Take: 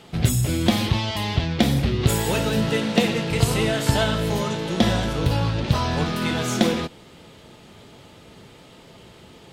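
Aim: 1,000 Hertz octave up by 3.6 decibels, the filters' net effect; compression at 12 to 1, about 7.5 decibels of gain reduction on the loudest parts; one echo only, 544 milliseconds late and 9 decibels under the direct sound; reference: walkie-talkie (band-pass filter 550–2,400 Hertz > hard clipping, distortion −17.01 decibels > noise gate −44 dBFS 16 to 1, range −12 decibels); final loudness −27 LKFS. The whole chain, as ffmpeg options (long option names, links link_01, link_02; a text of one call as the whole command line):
ffmpeg -i in.wav -af "equalizer=frequency=1000:width_type=o:gain=5.5,acompressor=threshold=-21dB:ratio=12,highpass=550,lowpass=2400,aecho=1:1:544:0.355,asoftclip=type=hard:threshold=-24.5dB,agate=range=-12dB:threshold=-44dB:ratio=16,volume=5dB" out.wav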